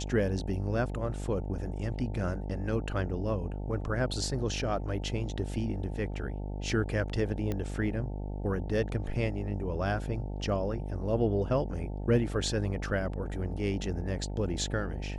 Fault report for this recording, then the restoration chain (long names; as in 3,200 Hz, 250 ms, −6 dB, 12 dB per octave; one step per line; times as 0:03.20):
mains buzz 50 Hz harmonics 18 −36 dBFS
0:07.52: click −20 dBFS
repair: click removal
hum removal 50 Hz, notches 18